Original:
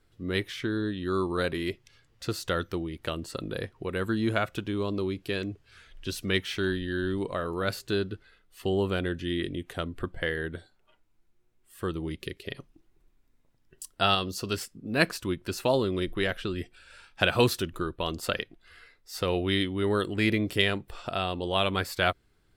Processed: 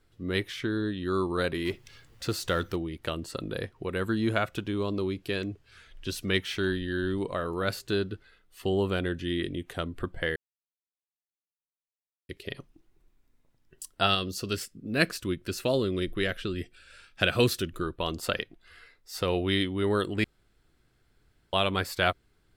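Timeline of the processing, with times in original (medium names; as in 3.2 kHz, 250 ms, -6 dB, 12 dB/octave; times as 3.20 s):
1.65–2.76 s: companding laws mixed up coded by mu
10.36–12.29 s: mute
14.07–17.83 s: peaking EQ 880 Hz -10 dB 0.56 oct
20.24–21.53 s: room tone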